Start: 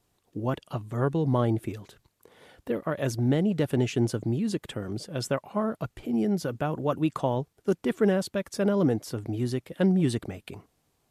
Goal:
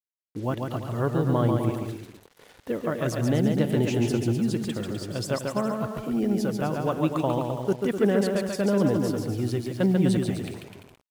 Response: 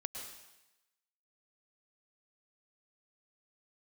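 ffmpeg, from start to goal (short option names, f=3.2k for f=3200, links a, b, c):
-af "aecho=1:1:140|252|341.6|413.3|470.6:0.631|0.398|0.251|0.158|0.1,acrusher=bits=7:mix=0:aa=0.5"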